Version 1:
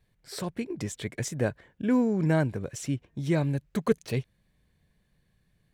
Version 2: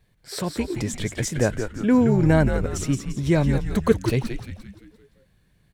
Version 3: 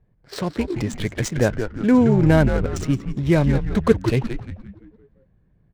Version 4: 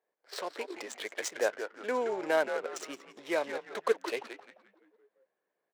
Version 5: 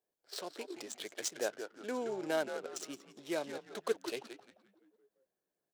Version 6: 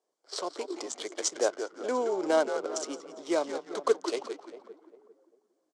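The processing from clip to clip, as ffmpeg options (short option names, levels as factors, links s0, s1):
-filter_complex "[0:a]asplit=7[s0][s1][s2][s3][s4][s5][s6];[s1]adelay=173,afreqshift=-110,volume=0.473[s7];[s2]adelay=346,afreqshift=-220,volume=0.221[s8];[s3]adelay=519,afreqshift=-330,volume=0.105[s9];[s4]adelay=692,afreqshift=-440,volume=0.049[s10];[s5]adelay=865,afreqshift=-550,volume=0.0232[s11];[s6]adelay=1038,afreqshift=-660,volume=0.0108[s12];[s0][s7][s8][s9][s10][s11][s12]amix=inputs=7:normalize=0,volume=2"
-af "adynamicsmooth=sensitivity=8:basefreq=1000,volume=1.33"
-af "highpass=f=460:w=0.5412,highpass=f=460:w=1.3066,volume=0.473"
-filter_complex "[0:a]equalizer=f=250:t=o:w=1:g=-4,equalizer=f=500:t=o:w=1:g=-10,equalizer=f=1000:t=o:w=1:g=-11,equalizer=f=2000:t=o:w=1:g=-12,asplit=2[s0][s1];[s1]adynamicsmooth=sensitivity=6.5:basefreq=2300,volume=0.75[s2];[s0][s2]amix=inputs=2:normalize=0,volume=1.19"
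-filter_complex "[0:a]highpass=f=220:w=0.5412,highpass=f=220:w=1.3066,equalizer=f=220:t=q:w=4:g=-7,equalizer=f=1100:t=q:w=4:g=5,equalizer=f=1700:t=q:w=4:g=-8,equalizer=f=2600:t=q:w=4:g=-9,equalizer=f=3800:t=q:w=4:g=-5,lowpass=f=8100:w=0.5412,lowpass=f=8100:w=1.3066,asplit=2[s0][s1];[s1]adelay=399,lowpass=f=960:p=1,volume=0.224,asplit=2[s2][s3];[s3]adelay=399,lowpass=f=960:p=1,volume=0.35,asplit=2[s4][s5];[s5]adelay=399,lowpass=f=960:p=1,volume=0.35[s6];[s0][s2][s4][s6]amix=inputs=4:normalize=0,volume=2.82"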